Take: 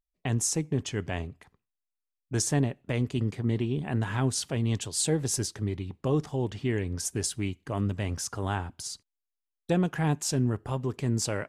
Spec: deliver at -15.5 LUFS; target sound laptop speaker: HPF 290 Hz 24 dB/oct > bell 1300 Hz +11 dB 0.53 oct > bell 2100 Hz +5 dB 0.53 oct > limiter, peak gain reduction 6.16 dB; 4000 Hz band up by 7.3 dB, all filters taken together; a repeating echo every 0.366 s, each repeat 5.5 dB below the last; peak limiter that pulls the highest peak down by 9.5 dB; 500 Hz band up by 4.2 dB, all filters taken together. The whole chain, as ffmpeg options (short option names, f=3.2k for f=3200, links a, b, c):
-af "equalizer=f=500:t=o:g=5,equalizer=f=4k:t=o:g=9,alimiter=limit=-20.5dB:level=0:latency=1,highpass=f=290:w=0.5412,highpass=f=290:w=1.3066,equalizer=f=1.3k:t=o:w=0.53:g=11,equalizer=f=2.1k:t=o:w=0.53:g=5,aecho=1:1:366|732|1098|1464|1830|2196|2562:0.531|0.281|0.149|0.079|0.0419|0.0222|0.0118,volume=17.5dB,alimiter=limit=-5dB:level=0:latency=1"